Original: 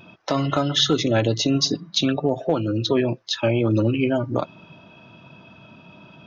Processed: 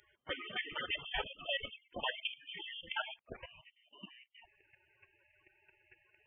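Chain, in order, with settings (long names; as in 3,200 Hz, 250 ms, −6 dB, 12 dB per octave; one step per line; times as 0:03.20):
gate on every frequency bin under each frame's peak −25 dB strong
high-pass filter 270 Hz 24 dB per octave, from 0:03.19 1,100 Hz
gate on every frequency bin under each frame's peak −25 dB weak
output level in coarse steps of 12 dB
voice inversion scrambler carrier 3,300 Hz
level +13.5 dB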